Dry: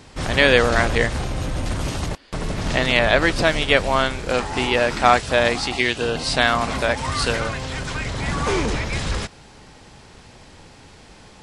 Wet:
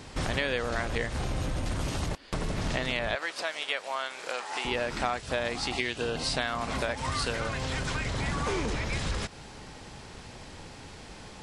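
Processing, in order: compression 5:1, threshold -28 dBFS, peak gain reduction 17 dB; 3.15–4.65 s: high-pass 650 Hz 12 dB/octave

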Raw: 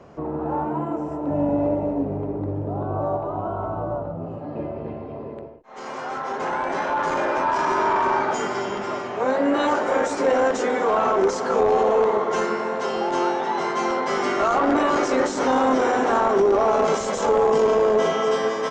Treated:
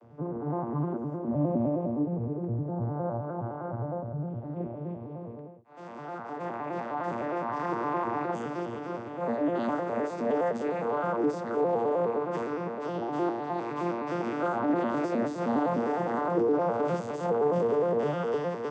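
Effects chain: vocoder on a broken chord major triad, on A#2, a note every 103 ms; trim -7 dB

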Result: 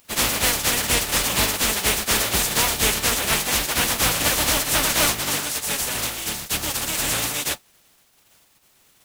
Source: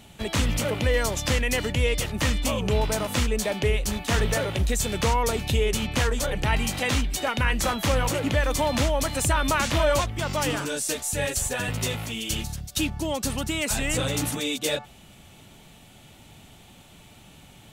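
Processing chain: spectral contrast reduction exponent 0.27; crossover distortion -47.5 dBFS; plain phase-vocoder stretch 0.51×; trim +6.5 dB

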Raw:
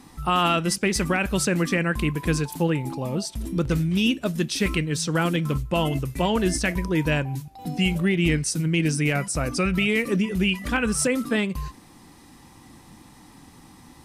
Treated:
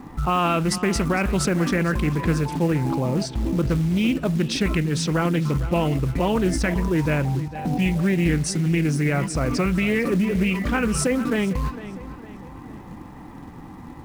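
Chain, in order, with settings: level-controlled noise filter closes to 1.9 kHz, open at -20 dBFS; treble shelf 2.9 kHz -11.5 dB; in parallel at -0.5 dB: compressor with a negative ratio -32 dBFS, ratio -1; on the sum: companded quantiser 6-bit; on a send: filtered feedback delay 454 ms, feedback 46%, low-pass 4.5 kHz, level -14 dB; on the sum: loudspeaker Doppler distortion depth 0.18 ms

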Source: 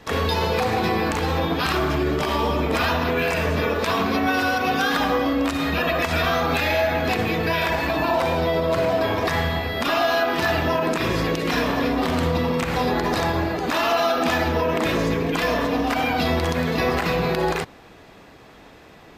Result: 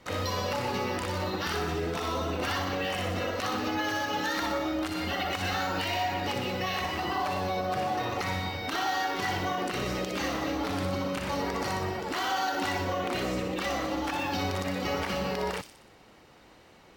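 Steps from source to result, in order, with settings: tape speed +13%; feedback echo behind a high-pass 61 ms, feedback 53%, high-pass 4.6 kHz, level -3 dB; trim -9 dB

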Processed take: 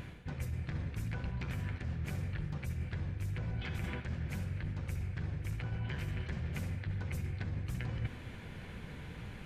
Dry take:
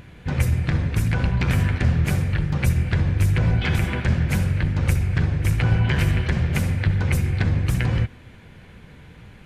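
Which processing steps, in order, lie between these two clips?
dynamic bell 9.9 kHz, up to -4 dB, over -55 dBFS, Q 2.9; reverse; compression 20:1, threshold -33 dBFS, peak gain reduction 20.5 dB; reverse; trim -1 dB

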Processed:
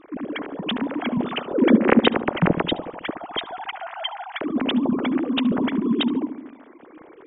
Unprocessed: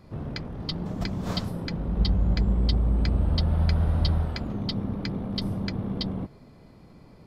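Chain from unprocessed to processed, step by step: formants replaced by sine waves; 1.54–2.15 s: ten-band graphic EQ 250 Hz +10 dB, 500 Hz +8 dB, 2 kHz +5 dB; filtered feedback delay 72 ms, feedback 66%, low-pass 900 Hz, level -10 dB

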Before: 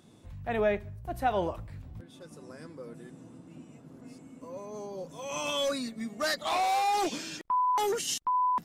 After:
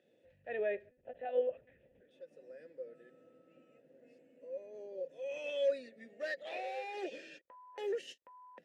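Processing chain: dynamic bell 380 Hz, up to +6 dB, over -49 dBFS, Q 5; 0.89–2.11 s: monotone LPC vocoder at 8 kHz 250 Hz; 2.85–3.78 s: whistle 1.3 kHz -52 dBFS; vowel filter e; endings held to a fixed fall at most 540 dB/s; trim +1.5 dB

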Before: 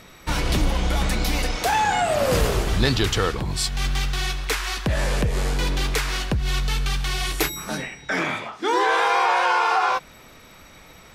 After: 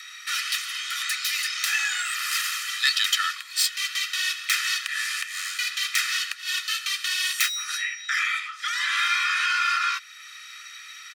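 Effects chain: tracing distortion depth 0.032 ms; comb 1.6 ms, depth 90%; in parallel at 0 dB: compression, threshold -36 dBFS, peak gain reduction 23 dB; on the sum: steep high-pass 1.4 kHz 48 dB/octave

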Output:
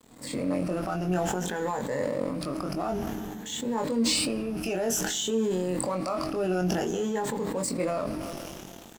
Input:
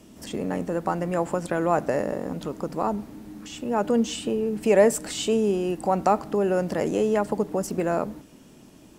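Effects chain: drifting ripple filter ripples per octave 1, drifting +0.54 Hz, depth 14 dB; dynamic bell 4.9 kHz, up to +6 dB, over -44 dBFS, Q 0.96; in parallel at -1 dB: compression, threshold -33 dBFS, peak gain reduction 20 dB; on the sum: peak limiter -15.5 dBFS, peak gain reduction 12 dB; crossover distortion -41.5 dBFS; doubling 22 ms -4 dB; on a send at -22 dB: reverberation RT60 2.2 s, pre-delay 18 ms; on the sum: decay stretcher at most 21 dB/s; trim -6 dB

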